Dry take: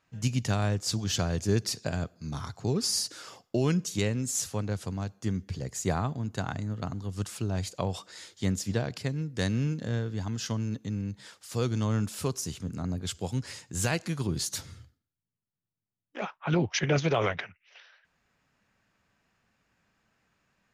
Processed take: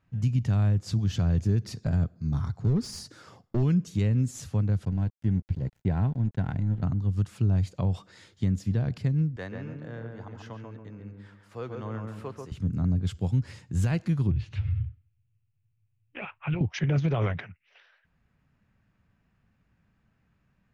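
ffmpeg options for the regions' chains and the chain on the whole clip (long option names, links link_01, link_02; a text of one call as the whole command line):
ffmpeg -i in.wav -filter_complex "[0:a]asettb=1/sr,asplit=3[link_01][link_02][link_03];[link_01]atrim=end=1.744[link_04];[link_02]atrim=start=1.74:end=3.63,asetpts=PTS-STARTPTS,afade=type=in:duration=0.004:curve=qsin,afade=type=out:start_time=1.886:duration=0.004:curve=qsin,equalizer=frequency=2800:width=2.5:gain=-5,volume=24dB,asoftclip=hard,volume=-24dB[link_05];[link_03]atrim=start=3.626[link_06];[link_04][link_05]acrossfade=duration=0.004:curve1=hsin:curve2=qsin[link_07];[link_07][link_06]acrossfade=duration=0.004:curve1=qsin:curve2=hsin,asettb=1/sr,asplit=3[link_08][link_09][link_10];[link_08]atrim=end=4.854[link_11];[link_09]atrim=start=4.85:end=6.83,asetpts=PTS-STARTPTS,afade=type=in:duration=0.004:curve=qsin,afade=type=out:start_time=1.976:duration=0.004:curve=qsin,acrossover=split=3600[link_12][link_13];[link_13]acompressor=threshold=-56dB:ratio=4:attack=1:release=60[link_14];[link_12][link_14]amix=inputs=2:normalize=0,aeval=exprs='sgn(val(0))*max(abs(val(0))-0.00631,0)':channel_layout=same,asuperstop=centerf=1200:order=4:qfactor=6.2[link_15];[link_10]atrim=start=6.826[link_16];[link_11][link_15]acrossfade=duration=0.004:curve1=hsin:curve2=qsin[link_17];[link_17][link_16]acrossfade=duration=0.004:curve1=qsin:curve2=hsin,asettb=1/sr,asplit=3[link_18][link_19][link_20];[link_18]atrim=end=9.364[link_21];[link_19]atrim=start=9.36:end=12.52,asetpts=PTS-STARTPTS,afade=type=in:duration=0.004:curve=qsin,afade=type=out:start_time=3.156:duration=0.004:curve=qsin,acrossover=split=410 2400:gain=0.0794 1 0.251[link_22][link_23][link_24];[link_22][link_23][link_24]amix=inputs=3:normalize=0,asplit=2[link_25][link_26];[link_26]adelay=139,lowpass=frequency=1600:poles=1,volume=-3dB,asplit=2[link_27][link_28];[link_28]adelay=139,lowpass=frequency=1600:poles=1,volume=0.4,asplit=2[link_29][link_30];[link_30]adelay=139,lowpass=frequency=1600:poles=1,volume=0.4,asplit=2[link_31][link_32];[link_32]adelay=139,lowpass=frequency=1600:poles=1,volume=0.4,asplit=2[link_33][link_34];[link_34]adelay=139,lowpass=frequency=1600:poles=1,volume=0.4[link_35];[link_25][link_27][link_29][link_31][link_33][link_35]amix=inputs=6:normalize=0,atrim=end_sample=139356[link_36];[link_20]atrim=start=12.516[link_37];[link_21][link_36]acrossfade=duration=0.004:curve1=hsin:curve2=qsin[link_38];[link_38][link_37]acrossfade=duration=0.004:curve1=qsin:curve2=hsin,asettb=1/sr,asplit=3[link_39][link_40][link_41];[link_39]atrim=end=14.314[link_42];[link_40]atrim=start=14.31:end=16.61,asetpts=PTS-STARTPTS,afade=type=in:duration=0.004:curve=qsin,afade=type=out:start_time=2.296:duration=0.004:curve=qsin,lowshelf=frequency=140:width_type=q:width=3:gain=9,acompressor=threshold=-35dB:ratio=2.5:attack=3.2:release=140:knee=1:detection=peak,lowpass=frequency=2600:width_type=q:width=5[link_43];[link_41]atrim=start=16.606[link_44];[link_42][link_43]acrossfade=duration=0.004:curve1=hsin:curve2=qsin[link_45];[link_45][link_44]acrossfade=duration=0.004:curve1=qsin:curve2=hsin,bass=frequency=250:gain=14,treble=frequency=4000:gain=-10,alimiter=limit=-13.5dB:level=0:latency=1:release=137,volume=-3.5dB" out.wav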